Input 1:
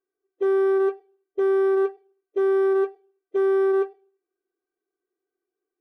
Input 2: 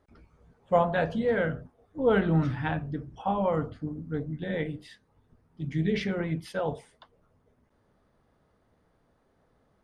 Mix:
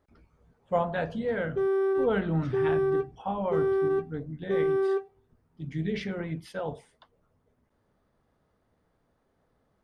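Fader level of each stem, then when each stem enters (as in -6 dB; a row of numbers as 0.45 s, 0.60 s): -5.5 dB, -3.5 dB; 1.15 s, 0.00 s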